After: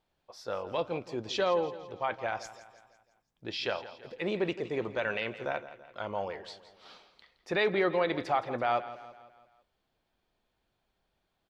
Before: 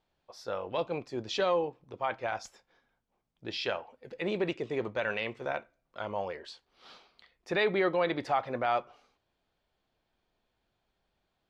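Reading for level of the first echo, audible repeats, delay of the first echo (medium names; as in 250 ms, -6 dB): -15.0 dB, 4, 167 ms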